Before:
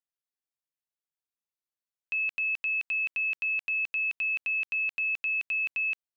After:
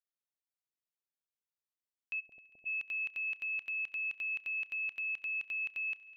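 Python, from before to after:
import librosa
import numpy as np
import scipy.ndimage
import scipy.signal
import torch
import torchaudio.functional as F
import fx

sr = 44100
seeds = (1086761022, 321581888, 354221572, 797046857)

p1 = fx.ellip_lowpass(x, sr, hz=710.0, order=4, stop_db=40, at=(2.19, 2.65), fade=0.02)
p2 = p1 + fx.echo_heads(p1, sr, ms=67, heads='first and third', feedback_pct=71, wet_db=-22, dry=0)
y = p2 * 10.0 ** (-7.5 / 20.0)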